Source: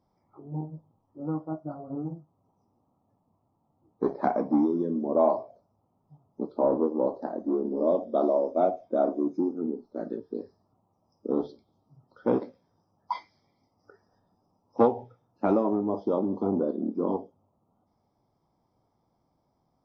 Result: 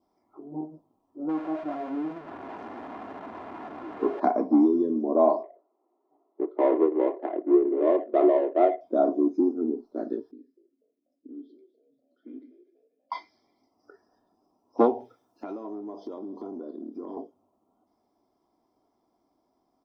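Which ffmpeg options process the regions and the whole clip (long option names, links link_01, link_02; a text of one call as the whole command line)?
ffmpeg -i in.wav -filter_complex "[0:a]asettb=1/sr,asplit=3[link_01][link_02][link_03];[link_01]atrim=end=1.294[link_04];[link_02]atrim=start=1.29:end=4.2,asetpts=PTS-STARTPTS,afade=type=in:duration=0.004:curve=qsin,afade=type=out:start_time=2.906:duration=0.004:curve=qsin,aeval=exprs='val(0)+0.5*0.0282*sgn(val(0))':channel_layout=same,bandpass=frequency=1100:width_type=q:width=0.87,aemphasis=mode=reproduction:type=riaa[link_05];[link_03]atrim=start=4.196[link_06];[link_04][link_05]acrossfade=duration=0.004:curve1=hsin:curve2=qsin[link_07];[link_07][link_06]acrossfade=duration=0.004:curve1=qsin:curve2=hsin,asettb=1/sr,asplit=3[link_08][link_09][link_10];[link_08]atrim=end=5.434[link_11];[link_09]atrim=start=5.43:end=8.81,asetpts=PTS-STARTPTS,afade=type=in:duration=0.004:curve=qsin,afade=type=out:start_time=3.376:duration=0.004:curve=qsin,adynamicsmooth=sensitivity=7:basefreq=1600,highpass=frequency=350:width=0.5412,highpass=frequency=350:width=1.3066,equalizer=frequency=360:width_type=q:width=4:gain=8,equalizer=frequency=1200:width_type=q:width=4:gain=3,equalizer=frequency=2000:width_type=q:width=4:gain=9,lowpass=frequency=3500:width=0.5412,lowpass=frequency=3500:width=1.3066[link_12];[link_10]atrim=start=8.806[link_13];[link_11][link_12]acrossfade=duration=0.004:curve1=hsin:curve2=qsin[link_14];[link_14][link_13]acrossfade=duration=0.004:curve1=qsin:curve2=hsin,asettb=1/sr,asplit=3[link_15][link_16][link_17];[link_15]atrim=end=10.314[link_18];[link_16]atrim=start=10.31:end=13.12,asetpts=PTS-STARTPTS,afade=type=in:duration=0.004:curve=qsin,afade=type=out:start_time=2.806:duration=0.004:curve=qsin,acompressor=threshold=-41dB:ratio=2:attack=3.2:release=140:knee=1:detection=peak,asplit=3[link_19][link_20][link_21];[link_19]bandpass=frequency=270:width_type=q:width=8,volume=0dB[link_22];[link_20]bandpass=frequency=2290:width_type=q:width=8,volume=-6dB[link_23];[link_21]bandpass=frequency=3010:width_type=q:width=8,volume=-9dB[link_24];[link_22][link_23][link_24]amix=inputs=3:normalize=0,asplit=5[link_25][link_26][link_27][link_28][link_29];[link_26]adelay=244,afreqshift=94,volume=-16.5dB[link_30];[link_27]adelay=488,afreqshift=188,volume=-23.2dB[link_31];[link_28]adelay=732,afreqshift=282,volume=-30dB[link_32];[link_29]adelay=976,afreqshift=376,volume=-36.7dB[link_33];[link_25][link_30][link_31][link_32][link_33]amix=inputs=5:normalize=0,atrim=end_sample=123921[link_34];[link_17]atrim=start=13.116[link_35];[link_18][link_34]acrossfade=duration=0.004:curve1=hsin:curve2=qsin[link_36];[link_36][link_35]acrossfade=duration=0.004:curve1=qsin:curve2=hsin,asettb=1/sr,asplit=3[link_37][link_38][link_39];[link_37]atrim=end=15.004[link_40];[link_38]atrim=start=15:end=17.17,asetpts=PTS-STARTPTS,afade=type=in:duration=0.004:curve=qsin,afade=type=out:start_time=2.166:duration=0.004:curve=qsin,highshelf=frequency=2100:gain=9.5,acompressor=threshold=-39dB:ratio=4:attack=3.2:release=140:knee=1:detection=peak[link_41];[link_39]atrim=start=17.166[link_42];[link_40][link_41]acrossfade=duration=0.004:curve1=hsin:curve2=qsin[link_43];[link_43][link_42]acrossfade=duration=0.004:curve1=qsin:curve2=hsin,lowshelf=frequency=180:width_type=q:width=1.5:gain=-10.5,aecho=1:1:2.9:0.39,adynamicequalizer=threshold=0.00355:dfrequency=1700:dqfactor=2.7:tfrequency=1700:tqfactor=2.7:attack=5:release=100:ratio=0.375:range=2:mode=cutabove:tftype=bell" out.wav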